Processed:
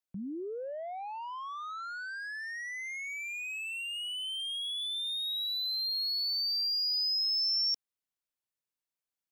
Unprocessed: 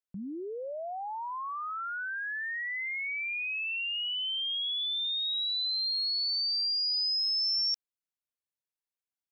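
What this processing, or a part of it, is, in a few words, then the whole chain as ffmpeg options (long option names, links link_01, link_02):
one-band saturation: -filter_complex "[0:a]acrossover=split=480|4400[link_01][link_02][link_03];[link_02]asoftclip=type=tanh:threshold=-38dB[link_04];[link_01][link_04][link_03]amix=inputs=3:normalize=0"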